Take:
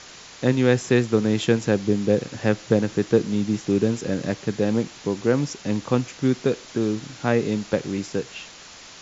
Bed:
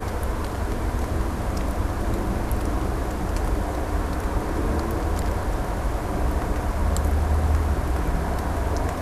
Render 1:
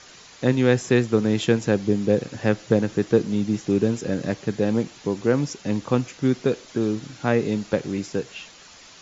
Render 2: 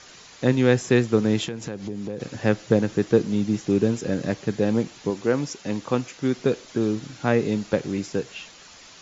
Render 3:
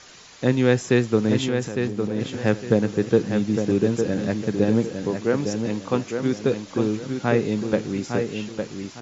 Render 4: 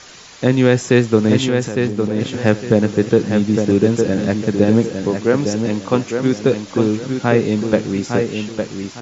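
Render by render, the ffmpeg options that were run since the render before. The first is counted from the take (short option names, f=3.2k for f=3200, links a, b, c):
-af "afftdn=nr=6:nf=-44"
-filter_complex "[0:a]asettb=1/sr,asplit=3[a][b][c];[a]atrim=end=1.474[d];[b]atrim=start=1.47:end=2.2,asetpts=PTS-STARTPTS,afade=t=in:d=0.004:c=qsin,afade=t=out:st=0.726:d=0.004:c=qsin,acompressor=threshold=-28dB:ratio=5:attack=3.2:release=140:knee=1:detection=peak[e];[c]atrim=start=2.196[f];[d][e]acrossfade=d=0.004:c1=hsin:c2=qsin[g];[g][f]acrossfade=d=0.004:c1=qsin:c2=hsin,asettb=1/sr,asplit=3[h][i][j];[h]atrim=end=5.104[k];[i]atrim=start=5.1:end=6.38,asetpts=PTS-STARTPTS,afade=t=in:d=0.004:c=qsin,afade=t=out:st=1.276:d=0.004:c=qsin,lowshelf=f=200:g=-7.5[l];[j]atrim=start=6.376[m];[k][l]acrossfade=d=0.004:c1=hsin:c2=qsin[n];[n][m]acrossfade=d=0.004:c1=qsin:c2=hsin"
-filter_complex "[0:a]asplit=2[a][b];[b]adelay=857,lowpass=f=4.6k:p=1,volume=-6dB,asplit=2[c][d];[d]adelay=857,lowpass=f=4.6k:p=1,volume=0.31,asplit=2[e][f];[f]adelay=857,lowpass=f=4.6k:p=1,volume=0.31,asplit=2[g][h];[h]adelay=857,lowpass=f=4.6k:p=1,volume=0.31[i];[a][c][e][g][i]amix=inputs=5:normalize=0"
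-af "volume=6.5dB,alimiter=limit=-1dB:level=0:latency=1"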